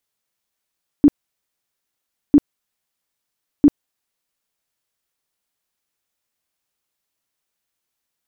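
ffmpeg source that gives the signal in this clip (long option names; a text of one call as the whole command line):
ffmpeg -f lavfi -i "aevalsrc='0.531*sin(2*PI*290*mod(t,1.3))*lt(mod(t,1.3),12/290)':duration=3.9:sample_rate=44100" out.wav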